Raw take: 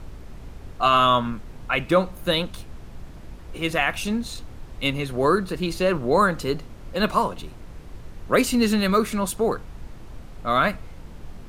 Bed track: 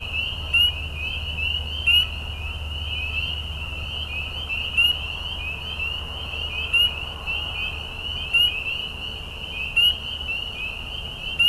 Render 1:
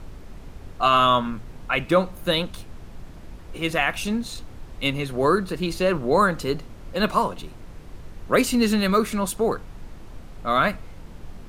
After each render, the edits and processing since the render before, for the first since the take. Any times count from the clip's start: de-hum 60 Hz, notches 2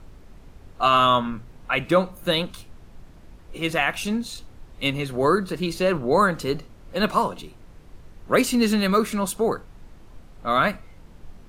noise print and reduce 6 dB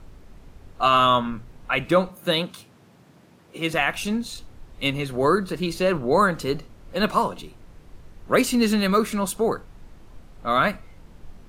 2.09–3.74 s: high-pass 120 Hz 24 dB/octave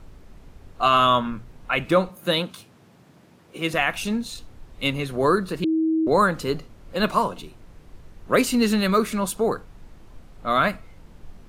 5.64–6.07 s: bleep 320 Hz -18 dBFS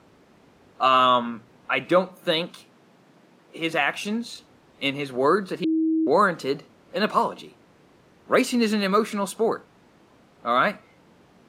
high-pass 210 Hz 12 dB/octave; treble shelf 8.4 kHz -10 dB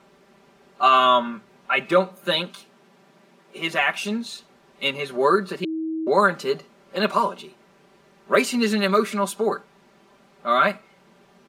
bass shelf 260 Hz -6.5 dB; comb 5.1 ms, depth 85%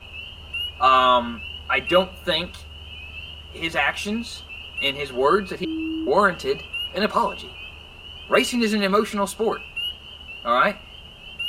add bed track -10.5 dB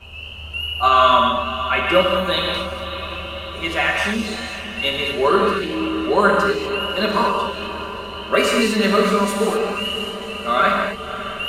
echo that smears into a reverb 573 ms, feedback 64%, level -12 dB; gated-style reverb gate 270 ms flat, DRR -1 dB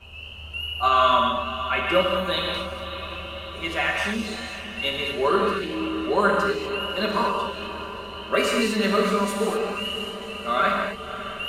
trim -5 dB

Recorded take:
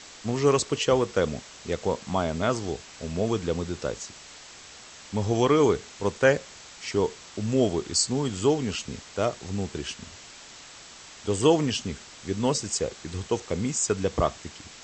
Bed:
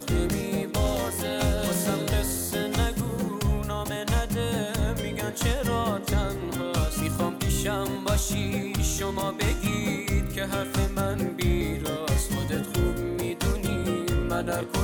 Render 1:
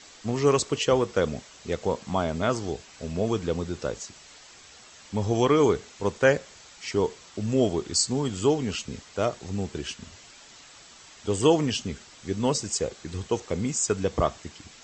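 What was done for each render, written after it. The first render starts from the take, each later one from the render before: noise reduction 6 dB, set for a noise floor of -47 dBFS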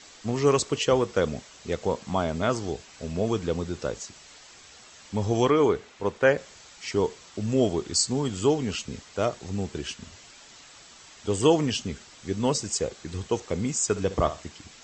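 5.50–6.38 s: tone controls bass -4 dB, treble -9 dB; 13.86–14.48 s: flutter echo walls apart 11.1 m, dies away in 0.28 s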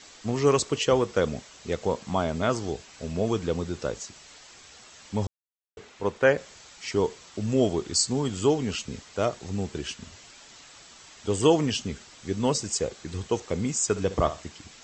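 5.27–5.77 s: mute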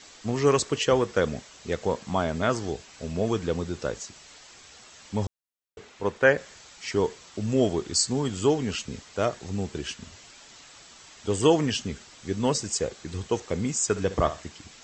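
dynamic bell 1.7 kHz, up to +5 dB, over -47 dBFS, Q 3.3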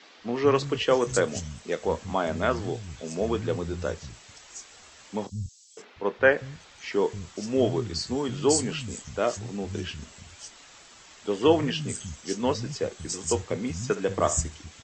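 doubling 25 ms -14 dB; three bands offset in time mids, lows, highs 190/550 ms, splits 170/4900 Hz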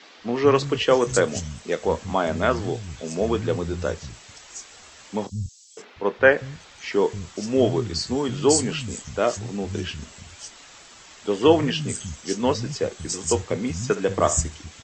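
trim +4 dB

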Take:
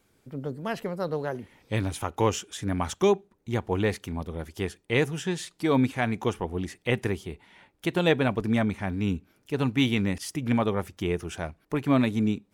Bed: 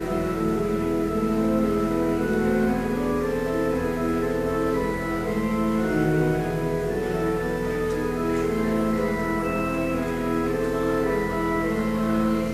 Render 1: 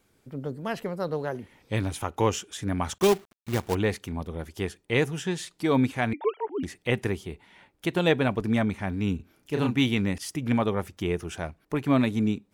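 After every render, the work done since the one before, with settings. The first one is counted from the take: 2.98–3.75 s: companded quantiser 4-bit; 6.13–6.63 s: formants replaced by sine waves; 9.16–9.75 s: doubling 33 ms -4 dB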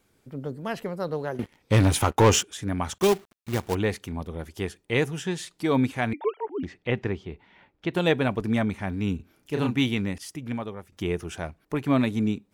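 1.39–2.43 s: waveshaping leveller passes 3; 6.27–7.94 s: distance through air 180 m; 9.76–10.92 s: fade out, to -15 dB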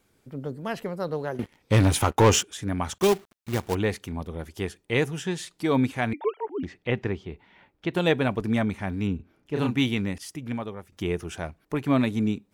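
9.07–9.56 s: low-pass 1.7 kHz 6 dB/octave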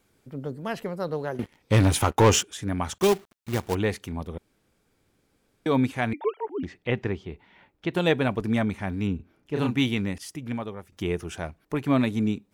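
4.38–5.66 s: room tone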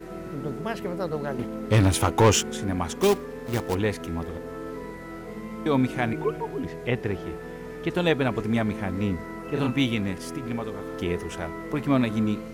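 add bed -12 dB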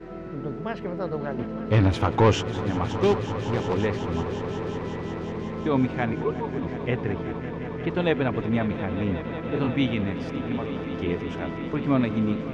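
distance through air 200 m; echo with a slow build-up 182 ms, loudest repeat 5, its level -15.5 dB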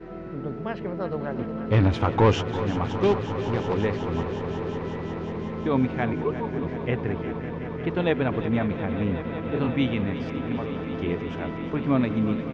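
distance through air 83 m; delay 351 ms -13 dB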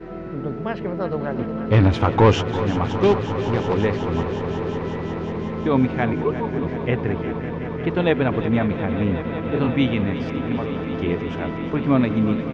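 trim +4.5 dB

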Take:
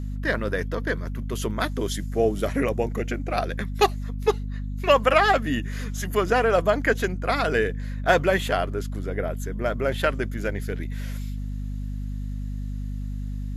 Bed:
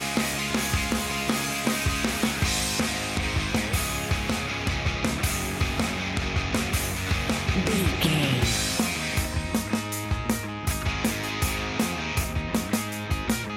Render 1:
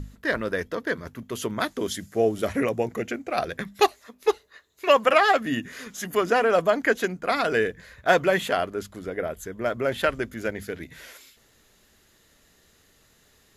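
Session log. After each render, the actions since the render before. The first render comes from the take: hum notches 50/100/150/200/250 Hz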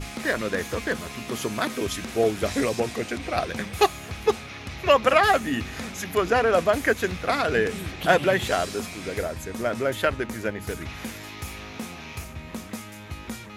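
add bed -9.5 dB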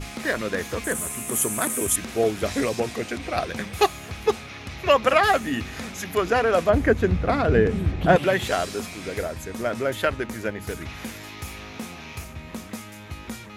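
0.84–1.96 s: resonant high shelf 6.5 kHz +12.5 dB, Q 3; 6.69–8.16 s: tilt EQ -3.5 dB/octave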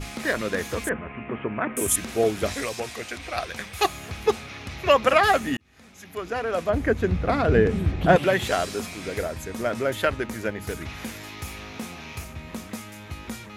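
0.89–1.77 s: steep low-pass 2.7 kHz 48 dB/octave; 2.54–3.85 s: peaking EQ 220 Hz -10 dB 2.9 oct; 5.57–7.50 s: fade in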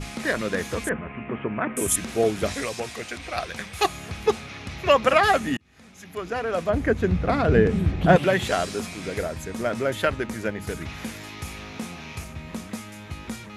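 low-pass 12 kHz 24 dB/octave; peaking EQ 170 Hz +4 dB 0.66 oct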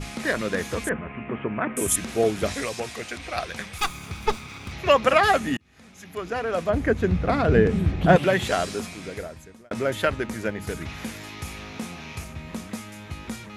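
3.78–4.72 s: comb filter that takes the minimum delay 0.84 ms; 8.70–9.71 s: fade out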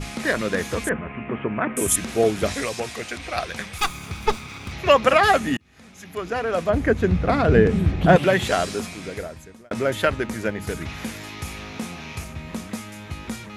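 trim +2.5 dB; peak limiter -3 dBFS, peak gain reduction 2 dB

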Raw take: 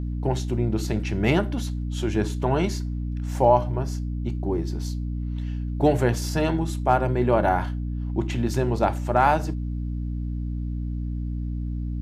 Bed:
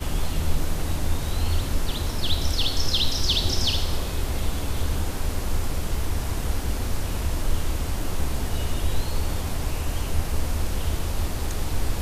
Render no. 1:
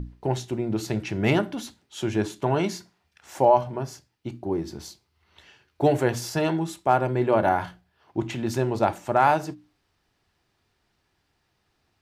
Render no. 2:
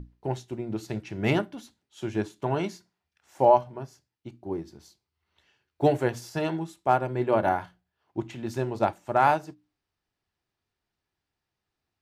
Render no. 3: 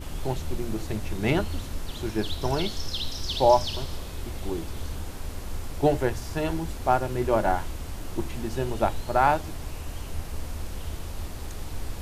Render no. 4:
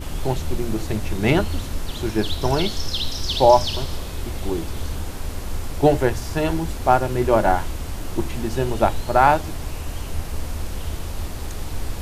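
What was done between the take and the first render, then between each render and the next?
hum notches 60/120/180/240/300 Hz
upward expansion 1.5:1, over -41 dBFS
add bed -8.5 dB
trim +6 dB; peak limiter -2 dBFS, peak gain reduction 1.5 dB

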